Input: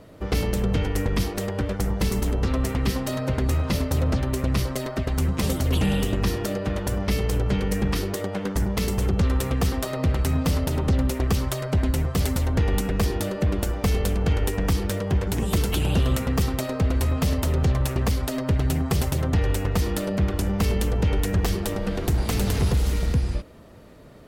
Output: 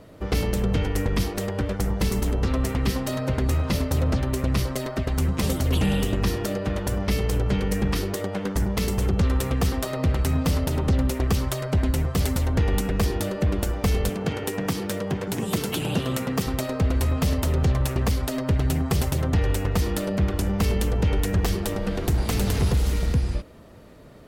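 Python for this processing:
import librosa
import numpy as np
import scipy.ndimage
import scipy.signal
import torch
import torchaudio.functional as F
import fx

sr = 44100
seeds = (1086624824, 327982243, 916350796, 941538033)

y = fx.highpass(x, sr, hz=120.0, slope=24, at=(14.09, 16.47))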